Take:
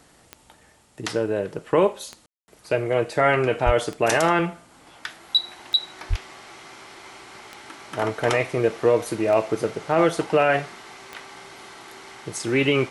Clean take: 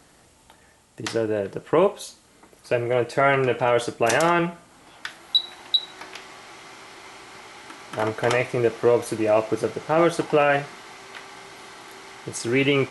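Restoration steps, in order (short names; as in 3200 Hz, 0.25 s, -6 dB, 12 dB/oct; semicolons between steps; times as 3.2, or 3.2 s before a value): de-click; 3.65–3.77 HPF 140 Hz 24 dB/oct; 6.09–6.21 HPF 140 Hz 24 dB/oct; room tone fill 2.26–2.48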